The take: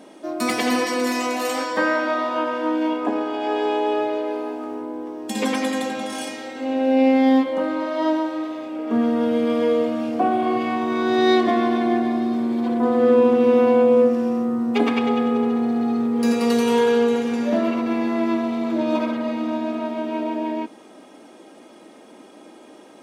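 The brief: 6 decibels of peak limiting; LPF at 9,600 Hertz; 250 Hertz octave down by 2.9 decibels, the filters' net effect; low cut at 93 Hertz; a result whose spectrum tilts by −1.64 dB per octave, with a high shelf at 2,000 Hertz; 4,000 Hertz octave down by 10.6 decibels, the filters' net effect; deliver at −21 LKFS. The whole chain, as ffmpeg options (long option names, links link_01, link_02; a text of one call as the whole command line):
ffmpeg -i in.wav -af "highpass=93,lowpass=9600,equalizer=frequency=250:width_type=o:gain=-3,highshelf=frequency=2000:gain=-6.5,equalizer=frequency=4000:width_type=o:gain=-7.5,volume=3.5dB,alimiter=limit=-11dB:level=0:latency=1" out.wav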